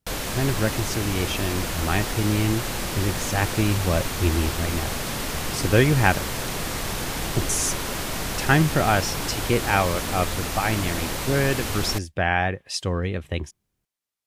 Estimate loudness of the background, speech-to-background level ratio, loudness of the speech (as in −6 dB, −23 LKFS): −28.0 LKFS, 3.0 dB, −25.0 LKFS